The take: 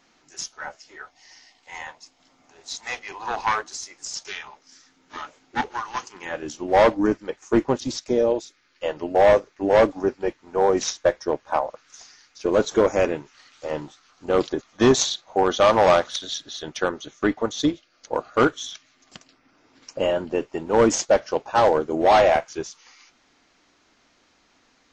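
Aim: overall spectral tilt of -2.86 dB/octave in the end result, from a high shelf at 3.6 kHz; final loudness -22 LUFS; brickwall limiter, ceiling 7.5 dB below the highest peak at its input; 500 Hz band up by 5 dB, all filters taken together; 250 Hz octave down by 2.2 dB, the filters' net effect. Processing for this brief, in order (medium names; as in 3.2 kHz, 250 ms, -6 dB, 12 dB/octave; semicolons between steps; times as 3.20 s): peaking EQ 250 Hz -7.5 dB; peaking EQ 500 Hz +7.5 dB; treble shelf 3.6 kHz +5 dB; trim +0.5 dB; peak limiter -9 dBFS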